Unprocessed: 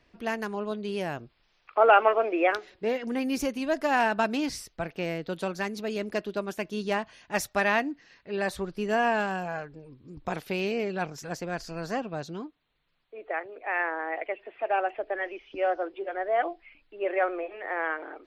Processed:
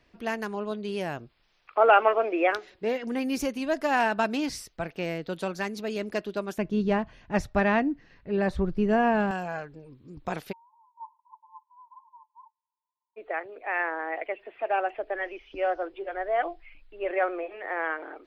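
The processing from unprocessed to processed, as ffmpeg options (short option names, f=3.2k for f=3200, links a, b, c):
-filter_complex "[0:a]asettb=1/sr,asplit=3[a][b][c];[a]atrim=end=6.584[d];[b]atrim=start=6.58:end=9.31,asetpts=PTS-STARTPTS,afade=t=in:d=0.004:c=qsin,afade=t=out:st=2.726:d=0.004:c=qsin,aemphasis=mode=reproduction:type=riaa[e];[c]atrim=start=9.306[f];[d][e]acrossfade=d=0.004:c1=hsin:c2=qsin[g];[g][f]acrossfade=d=0.004:c1=qsin:c2=hsin,asplit=3[h][i][j];[h]afade=t=out:st=10.51:d=0.02[k];[i]asuperpass=centerf=960:order=20:qfactor=5.1,afade=t=in:st=10.51:d=0.02,afade=t=out:st=13.16:d=0.02[l];[j]afade=t=in:st=13.16:d=0.02[m];[k][l][m]amix=inputs=3:normalize=0,asettb=1/sr,asplit=3[n][o][p];[n]atrim=end=14.684[q];[o]atrim=start=14.68:end=17.11,asetpts=PTS-STARTPTS,afade=t=in:d=0.004:c=qsin,afade=t=out:st=2.426:d=0.004:c=qsin,asubboost=boost=9:cutoff=87[r];[p]atrim=start=17.106[s];[q][r]acrossfade=d=0.004:c1=hsin:c2=qsin[t];[t][s]acrossfade=d=0.004:c1=qsin:c2=hsin"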